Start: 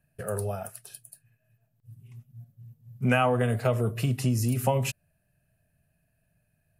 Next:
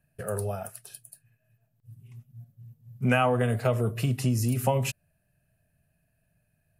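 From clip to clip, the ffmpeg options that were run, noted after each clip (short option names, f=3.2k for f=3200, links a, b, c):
-af anull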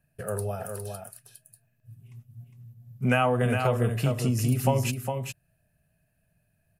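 -af "aecho=1:1:408:0.501"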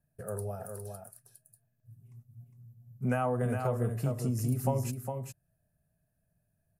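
-af "equalizer=f=2.9k:t=o:w=1.2:g=-14.5,volume=-5.5dB"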